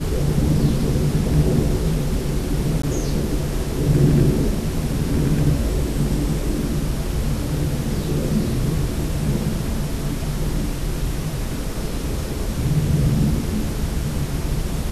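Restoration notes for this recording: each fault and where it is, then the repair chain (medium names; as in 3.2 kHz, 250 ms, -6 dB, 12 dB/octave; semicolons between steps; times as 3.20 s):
2.82–2.83 s: dropout 14 ms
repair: interpolate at 2.82 s, 14 ms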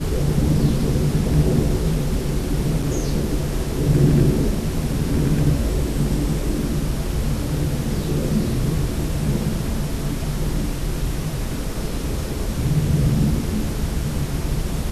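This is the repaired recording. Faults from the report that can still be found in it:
nothing left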